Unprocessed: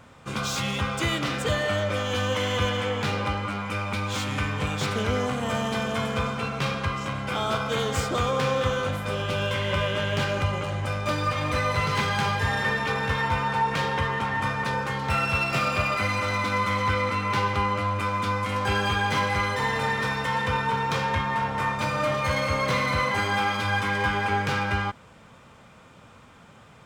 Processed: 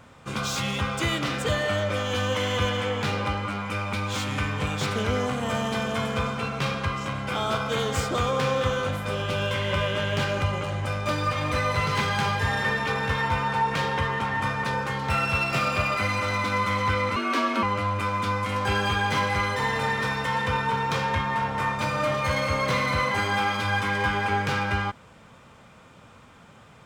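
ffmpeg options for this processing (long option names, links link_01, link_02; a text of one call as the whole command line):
ffmpeg -i in.wav -filter_complex "[0:a]asettb=1/sr,asplit=3[link_01][link_02][link_03];[link_01]atrim=end=17.164[link_04];[link_02]atrim=start=17.16:end=17.63,asetpts=PTS-STARTPTS,afade=type=in:duration=0.004:curve=qsin,afade=type=out:start_time=0.466:duration=0.004:curve=qsin,afreqshift=140[link_05];[link_03]atrim=start=17.626[link_06];[link_04][link_05]acrossfade=duration=0.004:curve1=hsin:curve2=qsin[link_07];[link_07][link_06]acrossfade=duration=0.004:curve1=qsin:curve2=hsin" out.wav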